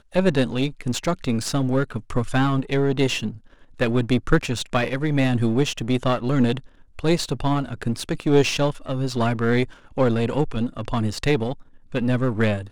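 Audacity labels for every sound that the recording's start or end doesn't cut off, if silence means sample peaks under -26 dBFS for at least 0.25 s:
3.800000	6.580000	sound
6.990000	9.640000	sound
9.980000	11.530000	sound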